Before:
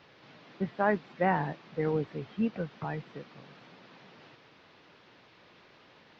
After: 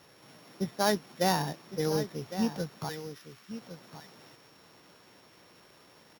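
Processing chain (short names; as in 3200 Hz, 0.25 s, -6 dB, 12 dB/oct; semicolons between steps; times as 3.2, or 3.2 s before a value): sample sorter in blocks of 8 samples; 2.89–3.51 HPF 1200 Hz 24 dB/oct; echo 1.109 s -12 dB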